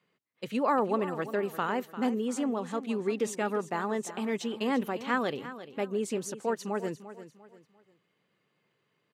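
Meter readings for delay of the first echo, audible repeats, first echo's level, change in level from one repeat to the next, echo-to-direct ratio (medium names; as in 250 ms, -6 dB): 347 ms, 3, -13.5 dB, -9.5 dB, -13.0 dB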